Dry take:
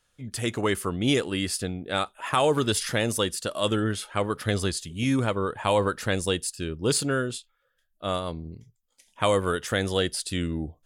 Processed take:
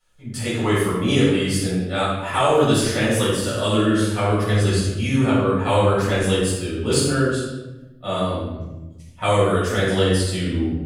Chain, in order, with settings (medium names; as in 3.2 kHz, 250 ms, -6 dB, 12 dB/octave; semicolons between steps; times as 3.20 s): 3.30–4.29 s: flutter echo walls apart 8.4 m, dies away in 0.52 s; simulated room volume 490 m³, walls mixed, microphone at 6.6 m; trim -8.5 dB